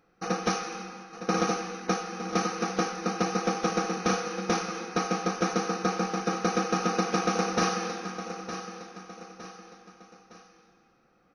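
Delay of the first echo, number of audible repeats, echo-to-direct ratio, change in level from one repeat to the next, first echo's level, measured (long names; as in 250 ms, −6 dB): 911 ms, 3, −10.0 dB, −7.5 dB, −11.0 dB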